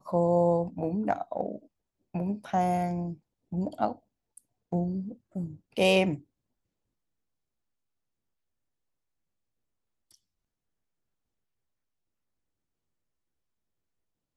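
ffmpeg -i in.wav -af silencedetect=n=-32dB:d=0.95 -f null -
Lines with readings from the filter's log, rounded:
silence_start: 6.15
silence_end: 14.37 | silence_duration: 8.21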